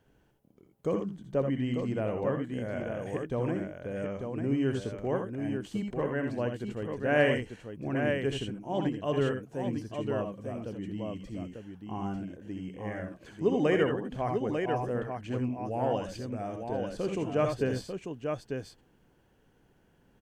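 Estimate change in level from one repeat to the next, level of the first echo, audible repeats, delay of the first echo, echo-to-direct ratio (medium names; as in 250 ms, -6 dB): no regular repeats, -7.5 dB, 2, 65 ms, -2.0 dB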